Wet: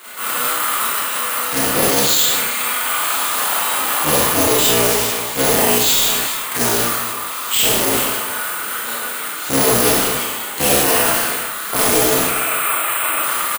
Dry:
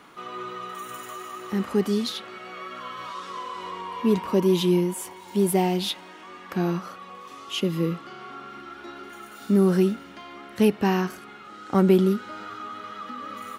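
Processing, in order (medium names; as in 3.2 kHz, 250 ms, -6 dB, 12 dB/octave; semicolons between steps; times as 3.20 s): cycle switcher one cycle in 3, inverted; 12.21–13.19 s: cabinet simulation 320–3600 Hz, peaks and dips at 340 Hz +6 dB, 650 Hz +8 dB, 2.5 kHz +9 dB; careless resampling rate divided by 4×, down filtered, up hold; tilt EQ +4 dB/octave; integer overflow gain 5.5 dB; delay 408 ms -19.5 dB; Schroeder reverb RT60 0.65 s, combs from 26 ms, DRR -7.5 dB; loudness maximiser +7.5 dB; decay stretcher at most 24 dB/s; trim -3 dB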